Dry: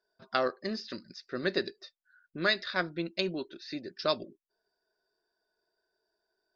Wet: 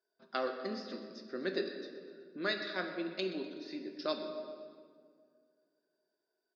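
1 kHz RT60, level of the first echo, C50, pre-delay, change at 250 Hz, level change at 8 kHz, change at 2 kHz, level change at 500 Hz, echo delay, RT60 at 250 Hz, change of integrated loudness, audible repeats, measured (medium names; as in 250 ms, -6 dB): 1.8 s, -15.5 dB, 6.0 dB, 5 ms, -3.0 dB, no reading, -7.0 dB, -4.0 dB, 125 ms, 2.4 s, -6.0 dB, 2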